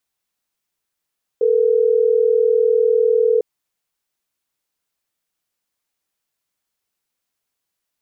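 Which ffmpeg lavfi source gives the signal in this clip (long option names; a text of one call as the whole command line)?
ffmpeg -f lavfi -i "aevalsrc='0.178*(sin(2*PI*440*t)+sin(2*PI*480*t))*clip(min(mod(t,6),2-mod(t,6))/0.005,0,1)':duration=3.12:sample_rate=44100" out.wav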